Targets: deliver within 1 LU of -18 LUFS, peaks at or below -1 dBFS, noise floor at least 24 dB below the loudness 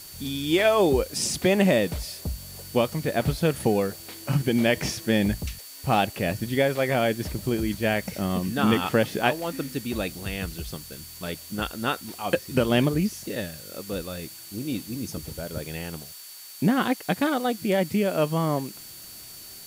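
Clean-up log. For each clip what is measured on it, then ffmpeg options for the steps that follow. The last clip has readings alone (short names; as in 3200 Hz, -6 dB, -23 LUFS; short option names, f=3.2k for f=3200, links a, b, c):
steady tone 4500 Hz; tone level -48 dBFS; noise floor -43 dBFS; noise floor target -50 dBFS; loudness -26.0 LUFS; peak -7.0 dBFS; loudness target -18.0 LUFS
-> -af "bandreject=f=4.5k:w=30"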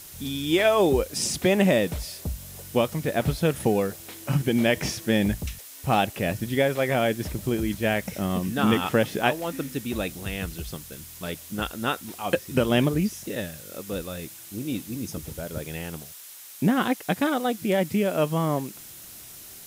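steady tone none; noise floor -44 dBFS; noise floor target -50 dBFS
-> -af "afftdn=nr=6:nf=-44"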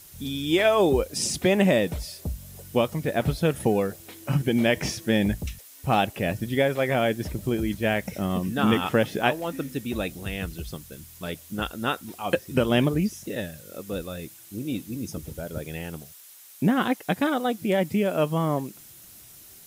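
noise floor -48 dBFS; noise floor target -50 dBFS
-> -af "afftdn=nr=6:nf=-48"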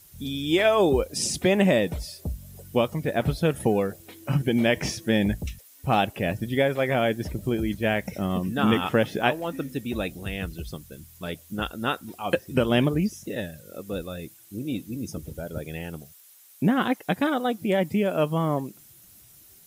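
noise floor -53 dBFS; loudness -26.0 LUFS; peak -7.5 dBFS; loudness target -18.0 LUFS
-> -af "volume=8dB,alimiter=limit=-1dB:level=0:latency=1"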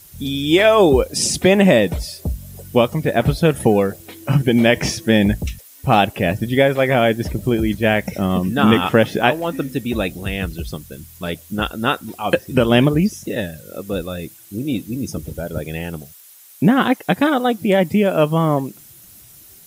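loudness -18.0 LUFS; peak -1.0 dBFS; noise floor -45 dBFS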